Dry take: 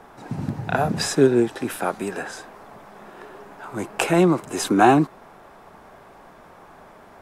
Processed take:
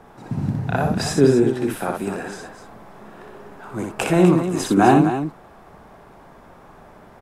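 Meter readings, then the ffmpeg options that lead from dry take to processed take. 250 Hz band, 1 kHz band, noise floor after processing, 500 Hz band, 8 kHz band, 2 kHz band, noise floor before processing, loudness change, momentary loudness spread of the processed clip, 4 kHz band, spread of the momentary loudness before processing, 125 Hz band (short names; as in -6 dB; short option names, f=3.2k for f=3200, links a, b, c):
+3.0 dB, 0.0 dB, -47 dBFS, +1.5 dB, -1.0 dB, -1.0 dB, -48 dBFS, +1.5 dB, 16 LU, -1.0 dB, 18 LU, +5.0 dB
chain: -filter_complex "[0:a]lowshelf=f=290:g=8,asplit=2[a][b];[b]aecho=0:1:61.22|250.7:0.631|0.355[c];[a][c]amix=inputs=2:normalize=0,volume=-3dB"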